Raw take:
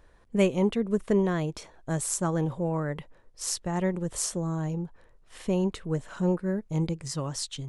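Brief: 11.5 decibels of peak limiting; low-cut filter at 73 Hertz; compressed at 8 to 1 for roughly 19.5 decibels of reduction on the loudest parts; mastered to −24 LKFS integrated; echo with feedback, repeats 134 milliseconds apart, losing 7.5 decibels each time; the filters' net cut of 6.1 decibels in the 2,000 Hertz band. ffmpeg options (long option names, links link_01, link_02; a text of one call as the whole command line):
ffmpeg -i in.wav -af "highpass=73,equalizer=frequency=2000:width_type=o:gain=-8,acompressor=threshold=-40dB:ratio=8,alimiter=level_in=12dB:limit=-24dB:level=0:latency=1,volume=-12dB,aecho=1:1:134|268|402|536|670:0.422|0.177|0.0744|0.0312|0.0131,volume=20.5dB" out.wav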